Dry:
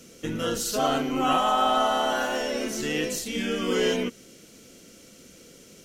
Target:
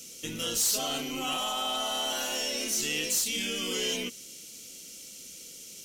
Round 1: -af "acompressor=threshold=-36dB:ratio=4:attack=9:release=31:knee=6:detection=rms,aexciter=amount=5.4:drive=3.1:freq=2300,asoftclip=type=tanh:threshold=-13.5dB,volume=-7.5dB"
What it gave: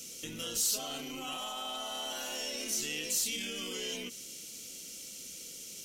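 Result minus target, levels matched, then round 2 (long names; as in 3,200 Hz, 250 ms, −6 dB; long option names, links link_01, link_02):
downward compressor: peak gain reduction +9 dB
-af "acompressor=threshold=-24dB:ratio=4:attack=9:release=31:knee=6:detection=rms,aexciter=amount=5.4:drive=3.1:freq=2300,asoftclip=type=tanh:threshold=-13.5dB,volume=-7.5dB"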